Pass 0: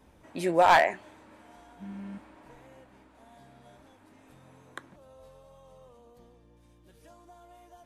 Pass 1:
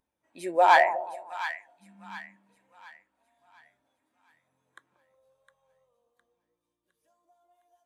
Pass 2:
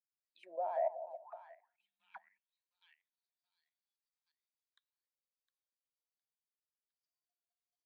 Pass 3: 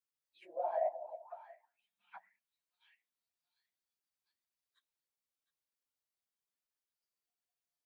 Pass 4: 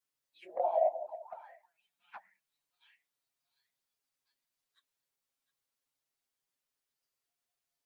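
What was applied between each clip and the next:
tilt +3 dB/oct; split-band echo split 970 Hz, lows 0.182 s, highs 0.71 s, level -7 dB; spectral expander 1.5:1; gain -1.5 dB
level quantiser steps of 13 dB; auto-wah 630–4900 Hz, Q 10, down, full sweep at -38 dBFS; gain +1 dB
phase scrambler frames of 50 ms
envelope flanger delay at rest 7.4 ms, full sweep at -35.5 dBFS; gain +7.5 dB

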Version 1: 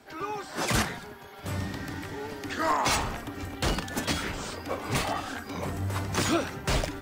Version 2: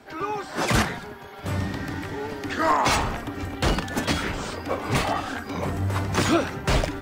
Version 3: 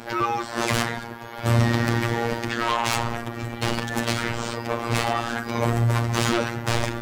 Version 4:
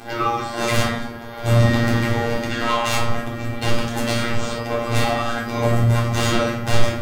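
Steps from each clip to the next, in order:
high shelf 4400 Hz -6.5 dB; gain +5.5 dB
sine folder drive 10 dB, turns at -8 dBFS; robotiser 117 Hz; AGC; gain -1 dB
shoebox room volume 440 m³, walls furnished, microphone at 3.7 m; gain -2.5 dB

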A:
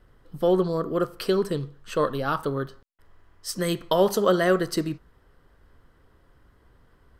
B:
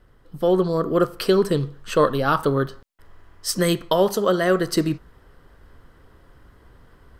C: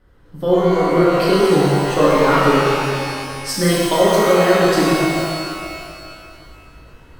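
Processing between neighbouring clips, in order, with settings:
vocal rider within 4 dB 0.5 s; gain +4.5 dB
high shelf 8500 Hz -4 dB; shimmer reverb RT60 2.3 s, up +12 st, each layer -8 dB, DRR -7.5 dB; gain -2.5 dB

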